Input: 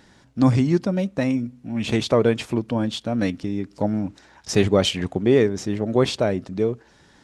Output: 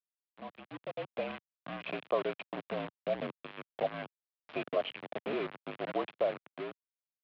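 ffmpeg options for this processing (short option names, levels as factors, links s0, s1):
-filter_complex "[0:a]asplit=3[s0][s1][s2];[s0]afade=t=out:st=1.28:d=0.02[s3];[s1]aecho=1:1:1.1:0.69,afade=t=in:st=1.28:d=0.02,afade=t=out:st=1.81:d=0.02[s4];[s2]afade=t=in:st=1.81:d=0.02[s5];[s3][s4][s5]amix=inputs=3:normalize=0,asettb=1/sr,asplit=3[s6][s7][s8];[s6]atrim=end=2.634[s9];[s7]atrim=start=2.63:end=3.31,asetpts=PTS-STARTPTS,afade=t=in:d=0.004:c=qsin,afade=t=out:st=0.676:d=0.004:c=qsin,tiltshelf=f=790:g=7.5[s10];[s8]atrim=start=3.306[s11];[s9][s10]acrossfade=d=0.004:c1=hsin:c2=qsin[s12];[s12][s11]acrossfade=d=0.004:c1=qsin:c2=hsin,asettb=1/sr,asplit=3[s13][s14][s15];[s13]atrim=end=4.624[s16];[s14]atrim=start=4.62:end=5.33,asetpts=PTS-STARTPTS,afade=t=in:d=0.004:c=qsin,afade=t=out:st=0.706:d=0.004:c=qsin,aeval=exprs='val(0)*sin(2*PI*95*n/s)':c=same[s17];[s15]atrim=start=5.326[s18];[s16][s17]acrossfade=d=0.004:c1=hsin:c2=qsin[s19];[s19][s18]acrossfade=d=0.004:c1=qsin:c2=hsin,acompressor=threshold=0.0224:ratio=2.5,asplit=3[s20][s21][s22];[s20]bandpass=f=730:t=q:w=8,volume=1[s23];[s21]bandpass=f=1090:t=q:w=8,volume=0.501[s24];[s22]bandpass=f=2440:t=q:w=8,volume=0.355[s25];[s23][s24][s25]amix=inputs=3:normalize=0,acrusher=bits=7:mix=0:aa=0.000001,highpass=f=180:t=q:w=0.5412,highpass=f=180:t=q:w=1.307,lowpass=f=3400:t=q:w=0.5176,lowpass=f=3400:t=q:w=0.7071,lowpass=f=3400:t=q:w=1.932,afreqshift=-50,dynaudnorm=f=210:g=9:m=3.76"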